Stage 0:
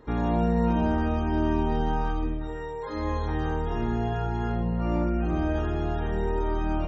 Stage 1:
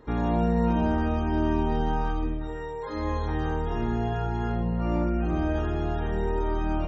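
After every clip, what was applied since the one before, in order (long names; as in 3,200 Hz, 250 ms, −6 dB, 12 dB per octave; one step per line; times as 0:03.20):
no processing that can be heard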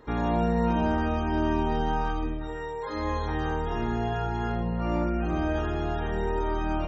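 low-shelf EQ 500 Hz −5.5 dB
level +3 dB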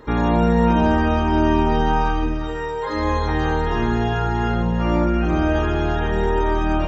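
notch filter 720 Hz, Q 12
delay with a high-pass on its return 339 ms, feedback 62%, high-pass 1,400 Hz, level −9 dB
level +8.5 dB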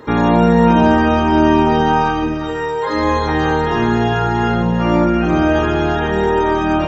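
high-pass filter 100 Hz 12 dB per octave
level +6 dB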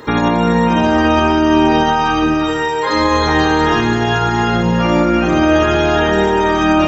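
high-shelf EQ 2,100 Hz +8.5 dB
brickwall limiter −7.5 dBFS, peak gain reduction 6.5 dB
echo machine with several playback heads 61 ms, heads first and third, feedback 62%, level −13 dB
level +2 dB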